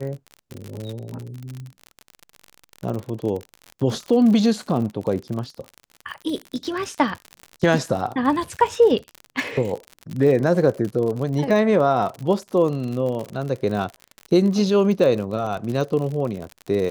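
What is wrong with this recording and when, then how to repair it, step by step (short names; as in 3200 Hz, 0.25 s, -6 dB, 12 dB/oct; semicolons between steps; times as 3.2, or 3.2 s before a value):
crackle 52/s -27 dBFS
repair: de-click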